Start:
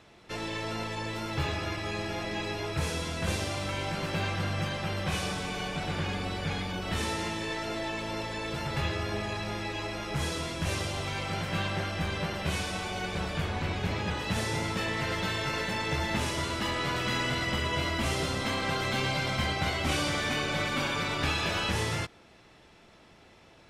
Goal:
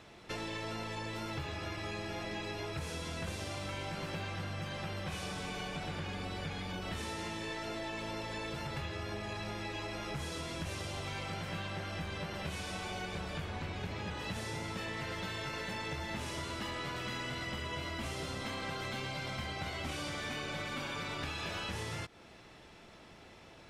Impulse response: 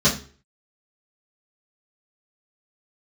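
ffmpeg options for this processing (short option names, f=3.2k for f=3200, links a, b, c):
-af "acompressor=threshold=-38dB:ratio=6,volume=1dB"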